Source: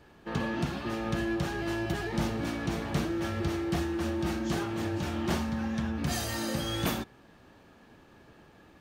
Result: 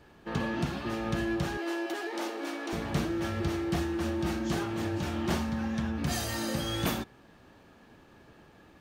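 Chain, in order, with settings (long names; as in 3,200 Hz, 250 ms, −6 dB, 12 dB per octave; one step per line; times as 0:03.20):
0:01.57–0:02.73: elliptic high-pass filter 300 Hz, stop band 60 dB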